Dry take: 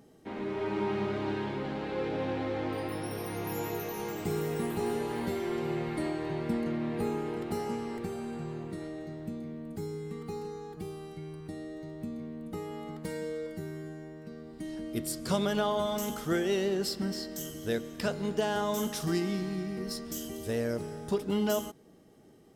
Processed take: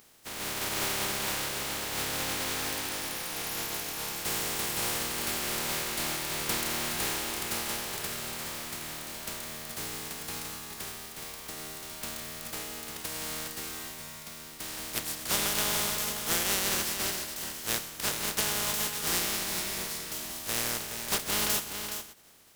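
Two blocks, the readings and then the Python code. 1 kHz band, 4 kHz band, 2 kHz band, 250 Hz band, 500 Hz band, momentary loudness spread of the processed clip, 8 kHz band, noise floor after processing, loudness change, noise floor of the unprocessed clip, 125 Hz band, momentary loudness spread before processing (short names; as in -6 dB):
+0.5 dB, +10.5 dB, +7.0 dB, -9.0 dB, -8.5 dB, 11 LU, +14.0 dB, -45 dBFS, +3.0 dB, -48 dBFS, -6.5 dB, 12 LU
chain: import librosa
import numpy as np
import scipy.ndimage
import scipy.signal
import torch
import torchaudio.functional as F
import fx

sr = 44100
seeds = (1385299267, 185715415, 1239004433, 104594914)

y = fx.spec_flatten(x, sr, power=0.18)
y = y + 10.0 ** (-8.0 / 20.0) * np.pad(y, (int(419 * sr / 1000.0), 0))[:len(y)]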